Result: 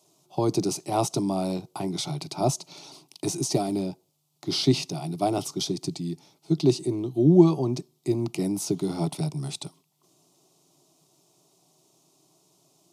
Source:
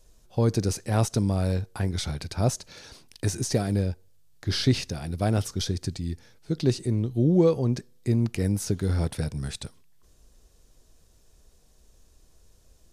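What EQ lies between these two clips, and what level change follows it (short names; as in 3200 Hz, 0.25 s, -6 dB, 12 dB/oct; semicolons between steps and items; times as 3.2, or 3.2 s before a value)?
steep high-pass 150 Hz 36 dB/oct; high shelf 4000 Hz -5.5 dB; fixed phaser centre 330 Hz, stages 8; +6.5 dB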